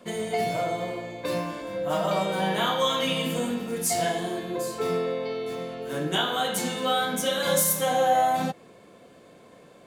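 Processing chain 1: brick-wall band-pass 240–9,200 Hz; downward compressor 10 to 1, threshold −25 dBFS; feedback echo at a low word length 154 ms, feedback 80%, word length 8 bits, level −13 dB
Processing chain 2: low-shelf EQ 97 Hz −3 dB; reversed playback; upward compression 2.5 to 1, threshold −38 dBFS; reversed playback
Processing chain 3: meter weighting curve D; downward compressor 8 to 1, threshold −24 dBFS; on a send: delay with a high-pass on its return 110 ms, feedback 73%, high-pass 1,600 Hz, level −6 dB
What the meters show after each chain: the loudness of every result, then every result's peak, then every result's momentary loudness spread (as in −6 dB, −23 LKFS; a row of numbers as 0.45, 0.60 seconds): −30.0, −26.5, −26.0 LKFS; −14.5, −11.0, −12.0 dBFS; 7, 11, 6 LU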